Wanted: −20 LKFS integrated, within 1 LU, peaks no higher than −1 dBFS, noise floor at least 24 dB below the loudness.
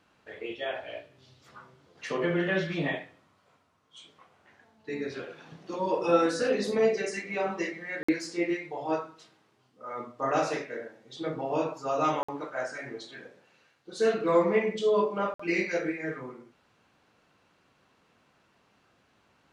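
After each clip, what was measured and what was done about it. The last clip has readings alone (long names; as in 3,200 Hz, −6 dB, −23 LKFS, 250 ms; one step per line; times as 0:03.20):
number of dropouts 3; longest dropout 55 ms; integrated loudness −30.0 LKFS; sample peak −11.0 dBFS; target loudness −20.0 LKFS
→ repair the gap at 0:08.03/0:12.23/0:15.34, 55 ms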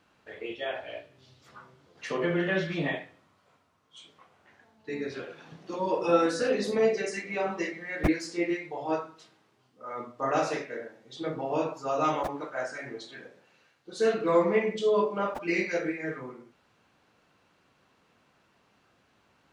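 number of dropouts 0; integrated loudness −29.5 LKFS; sample peak −11.0 dBFS; target loudness −20.0 LKFS
→ level +9.5 dB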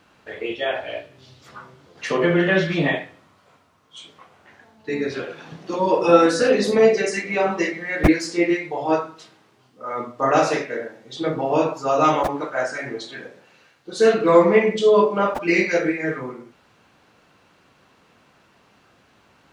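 integrated loudness −20.0 LKFS; sample peak −1.5 dBFS; background noise floor −58 dBFS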